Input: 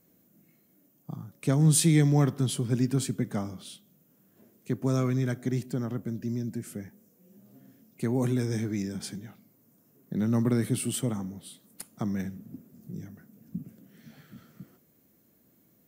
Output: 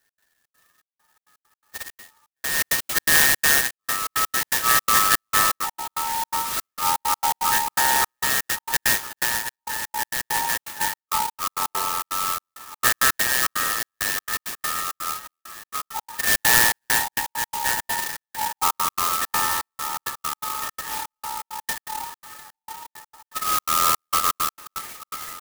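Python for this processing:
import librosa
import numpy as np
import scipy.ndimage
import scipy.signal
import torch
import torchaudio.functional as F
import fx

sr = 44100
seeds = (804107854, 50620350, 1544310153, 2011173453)

y = fx.band_invert(x, sr, width_hz=2000)
y = fx.rider(y, sr, range_db=4, speed_s=2.0)
y = scipy.signal.sosfilt(scipy.signal.butter(2, 830.0, 'highpass', fs=sr, output='sos'), y)
y = fx.peak_eq(y, sr, hz=1200.0, db=-11.0, octaves=0.43)
y = fx.rotary(y, sr, hz=0.85)
y = fx.echo_pitch(y, sr, ms=286, semitones=-6, count=2, db_per_echo=-3.0)
y = fx.high_shelf(y, sr, hz=7700.0, db=-2.5)
y = fx.echo_feedback(y, sr, ms=990, feedback_pct=39, wet_db=-18.0)
y = fx.stretch_vocoder(y, sr, factor=1.6)
y = fx.env_lowpass(y, sr, base_hz=1900.0, full_db=-26.0)
y = fx.step_gate(y, sr, bpm=166, pattern='x.xxx.xxx..xx.x.', floor_db=-60.0, edge_ms=4.5)
y = fx.clock_jitter(y, sr, seeds[0], jitter_ms=0.098)
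y = y * 10.0 ** (8.5 / 20.0)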